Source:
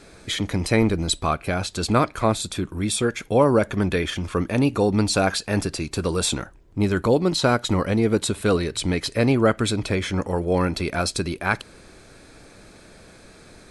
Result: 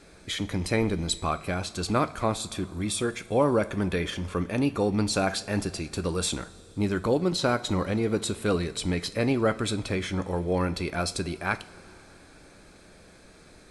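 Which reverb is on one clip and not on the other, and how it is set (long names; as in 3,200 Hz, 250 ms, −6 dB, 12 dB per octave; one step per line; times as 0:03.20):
coupled-rooms reverb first 0.35 s, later 4.1 s, from −18 dB, DRR 11 dB
level −5.5 dB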